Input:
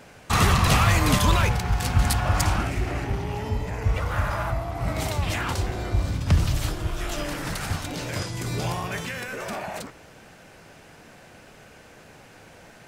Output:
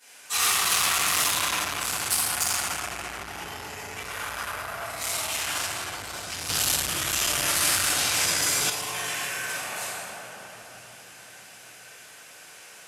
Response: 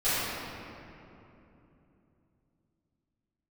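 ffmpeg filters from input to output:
-filter_complex "[1:a]atrim=start_sample=2205,asetrate=26901,aresample=44100[s0];[0:a][s0]afir=irnorm=-1:irlink=0,asoftclip=type=tanh:threshold=0.708,aderivative,asettb=1/sr,asplit=3[s1][s2][s3];[s1]atrim=end=6.494[s4];[s2]atrim=start=6.49:end=8.7,asetpts=PTS-STARTPTS,afade=t=in:d=0.004:c=qsin,afade=t=out:st=2.206:d=0.004:c=qsin,acontrast=68[s5];[s3]atrim=start=8.696[s6];[s4][s5]acrossfade=d=0.004:c1=hsin:c2=qsin[s7];[s7][s6]acrossfade=d=0.004:c1=qsin:c2=hsin,volume=0.794"

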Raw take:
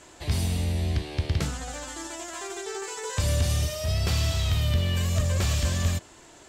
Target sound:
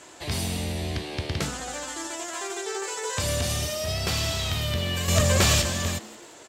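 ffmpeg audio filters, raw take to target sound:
-filter_complex "[0:a]highpass=f=230:p=1,asettb=1/sr,asplit=3[s0][s1][s2];[s0]atrim=end=5.084[s3];[s1]atrim=start=5.08:end=5.62,asetpts=PTS-STARTPTS,afade=t=in:d=0.004:c=qsin,afade=t=out:st=0.536:d=0.004:c=qsin,acontrast=79[s4];[s2]atrim=start=5.616[s5];[s3][s4]acrossfade=d=0.004:c1=hsin:c2=qsin[s6];[s6][s5]acrossfade=d=0.004:c1=qsin:c2=hsin,asplit=2[s7][s8];[s8]asplit=4[s9][s10][s11][s12];[s9]adelay=178,afreqshift=130,volume=0.106[s13];[s10]adelay=356,afreqshift=260,volume=0.0507[s14];[s11]adelay=534,afreqshift=390,volume=0.0243[s15];[s12]adelay=712,afreqshift=520,volume=0.0117[s16];[s13][s14][s15][s16]amix=inputs=4:normalize=0[s17];[s7][s17]amix=inputs=2:normalize=0,volume=1.5"

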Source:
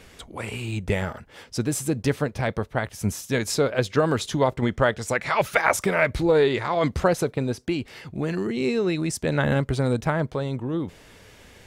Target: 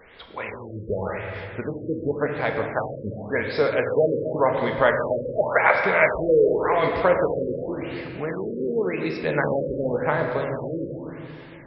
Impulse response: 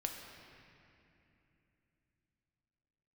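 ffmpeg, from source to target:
-filter_complex "[0:a]equalizer=f=500:t=o:w=1:g=9,equalizer=f=1000:t=o:w=1:g=8,equalizer=f=2000:t=o:w=1:g=10,equalizer=f=4000:t=o:w=1:g=8,equalizer=f=8000:t=o:w=1:g=-11[s0];[1:a]atrim=start_sample=2205[s1];[s0][s1]afir=irnorm=-1:irlink=0,afftfilt=real='re*lt(b*sr/1024,560*pow(5700/560,0.5+0.5*sin(2*PI*0.9*pts/sr)))':imag='im*lt(b*sr/1024,560*pow(5700/560,0.5+0.5*sin(2*PI*0.9*pts/sr)))':win_size=1024:overlap=0.75,volume=0.422"

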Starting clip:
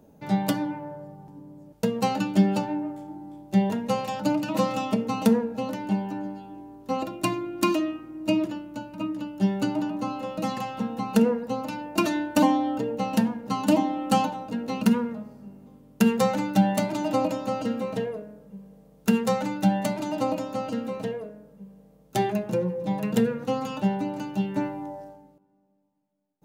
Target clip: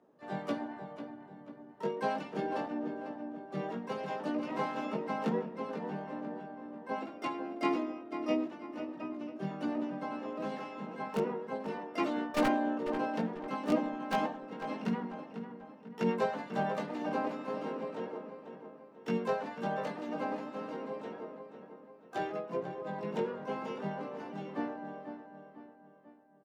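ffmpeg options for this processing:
-filter_complex "[0:a]acrossover=split=230 6500:gain=0.0631 1 0.1[s0][s1][s2];[s0][s1][s2]amix=inputs=3:normalize=0,aeval=exprs='(mod(3.76*val(0)+1,2)-1)/3.76':c=same,flanger=delay=16.5:depth=3.5:speed=0.32,asplit=2[s3][s4];[s4]adelay=494,lowpass=f=2800:p=1,volume=0.355,asplit=2[s5][s6];[s6]adelay=494,lowpass=f=2800:p=1,volume=0.47,asplit=2[s7][s8];[s8]adelay=494,lowpass=f=2800:p=1,volume=0.47,asplit=2[s9][s10];[s10]adelay=494,lowpass=f=2800:p=1,volume=0.47,asplit=2[s11][s12];[s12]adelay=494,lowpass=f=2800:p=1,volume=0.47[s13];[s3][s5][s7][s9][s11][s13]amix=inputs=6:normalize=0,asplit=4[s14][s15][s16][s17];[s15]asetrate=35002,aresample=44100,atempo=1.25992,volume=0.562[s18];[s16]asetrate=55563,aresample=44100,atempo=0.793701,volume=0.178[s19];[s17]asetrate=88200,aresample=44100,atempo=0.5,volume=0.355[s20];[s14][s18][s19][s20]amix=inputs=4:normalize=0,highshelf=f=4200:g=-11.5,volume=0.473"

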